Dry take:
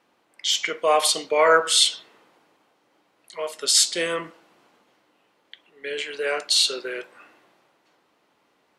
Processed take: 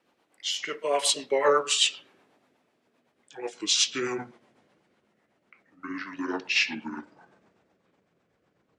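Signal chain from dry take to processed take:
pitch glide at a constant tempo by −11 semitones starting unshifted
rotating-speaker cabinet horn 8 Hz
level −1.5 dB

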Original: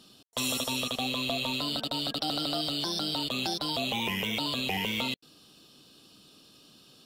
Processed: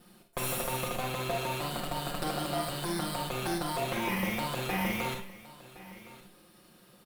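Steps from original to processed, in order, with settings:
lower of the sound and its delayed copy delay 5.6 ms
flat-topped bell 4,700 Hz −11 dB
on a send: single-tap delay 1,065 ms −18 dB
on the sum: four-comb reverb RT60 0.36 s, combs from 32 ms, DRR 3 dB
level +1.5 dB

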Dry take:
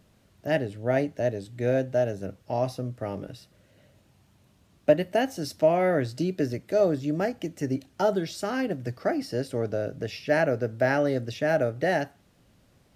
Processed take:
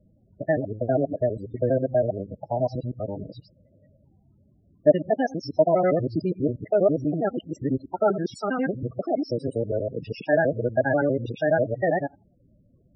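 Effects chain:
reversed piece by piece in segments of 81 ms
spectral peaks only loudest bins 16
dynamic equaliser 1,300 Hz, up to +6 dB, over −50 dBFS, Q 3.8
level +2.5 dB

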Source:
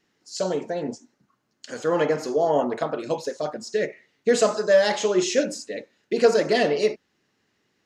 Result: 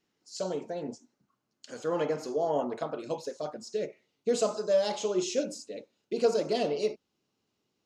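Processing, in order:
parametric band 1,800 Hz −6 dB 0.45 octaves, from 0:03.73 −15 dB
level −7.5 dB

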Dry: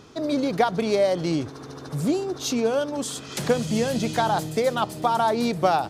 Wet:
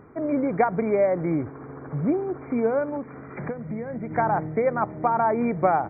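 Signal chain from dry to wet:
adaptive Wiener filter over 9 samples
0:02.97–0:04.11: downward compressor 12 to 1, threshold −28 dBFS, peak gain reduction 12.5 dB
linear-phase brick-wall low-pass 2,400 Hz

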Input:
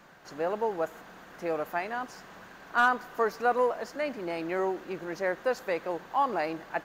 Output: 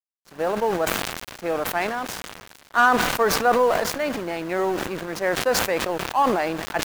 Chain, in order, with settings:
parametric band 80 Hz +8 dB 1.4 octaves
in parallel at −5.5 dB: bit reduction 7 bits
on the sum: dead-zone distortion −38 dBFS
level that may fall only so fast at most 38 dB per second
level +3 dB

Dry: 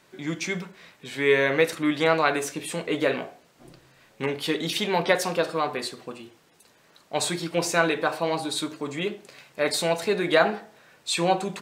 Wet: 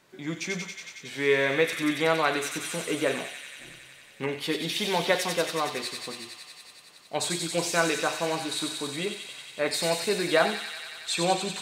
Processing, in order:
delay with a high-pass on its return 92 ms, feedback 83%, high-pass 2,600 Hz, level −3 dB
level −3 dB

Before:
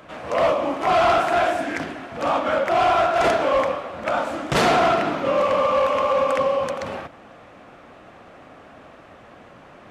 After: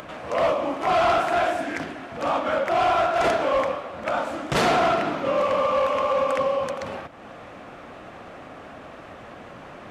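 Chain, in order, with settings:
upward compression, threshold −30 dBFS
level −2.5 dB

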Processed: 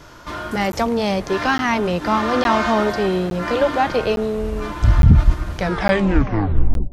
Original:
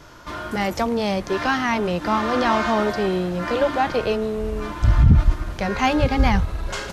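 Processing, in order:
turntable brake at the end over 1.36 s
bucket-brigade delay 193 ms, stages 1,024, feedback 57%, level −21.5 dB
regular buffer underruns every 0.86 s, samples 512, zero, from 0:00.72
level +2.5 dB

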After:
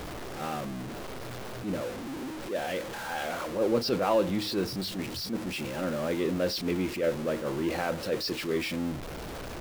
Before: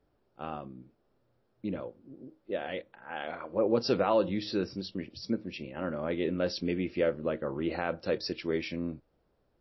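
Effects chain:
converter with a step at zero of −32.5 dBFS
level that may rise only so fast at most 130 dB per second

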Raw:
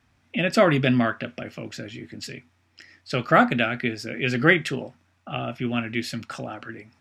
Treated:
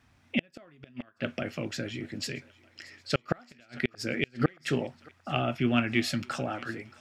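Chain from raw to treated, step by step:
in parallel at −5 dB: soft clipping −11.5 dBFS, distortion −14 dB
on the sum: gate with flip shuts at −8 dBFS, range −37 dB
feedback echo with a high-pass in the loop 627 ms, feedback 62%, high-pass 640 Hz, level −21 dB
level −3 dB

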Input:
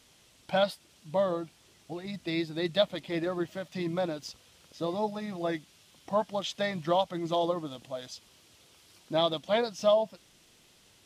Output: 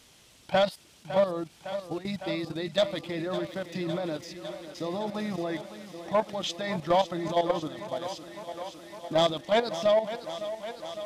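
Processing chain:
output level in coarse steps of 13 dB
soft clipping −23 dBFS, distortion −16 dB
feedback echo with a high-pass in the loop 557 ms, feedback 80%, high-pass 150 Hz, level −12 dB
level +7.5 dB

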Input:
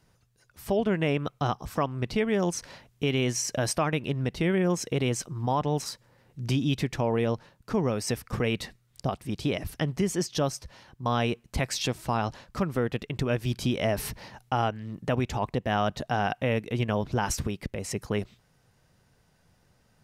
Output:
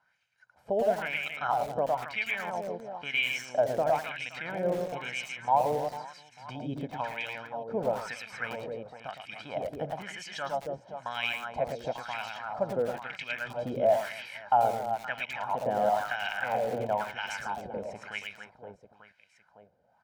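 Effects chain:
comb filter 1.3 ms, depth 64%
on a send: reverse bouncing-ball delay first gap 110 ms, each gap 1.5×, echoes 5
on the sum: LFO wah 1 Hz 450–2,500 Hz, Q 3.3
feedback echo at a low word length 86 ms, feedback 35%, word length 6 bits, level −13.5 dB
level +4.5 dB

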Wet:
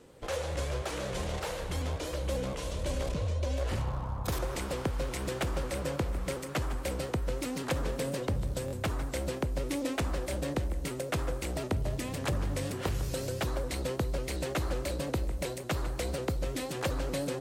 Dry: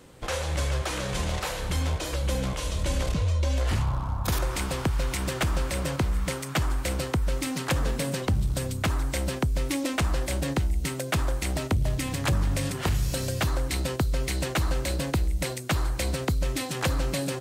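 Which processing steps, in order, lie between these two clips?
parametric band 470 Hz +6.5 dB 1.2 octaves
on a send: tape delay 152 ms, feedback 70%, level −10.5 dB, low-pass 2,300 Hz
on the sum: buffer that repeats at 0:08.66, samples 1,024, times 2
pitch modulation by a square or saw wave saw up 5.5 Hz, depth 100 cents
level −7.5 dB

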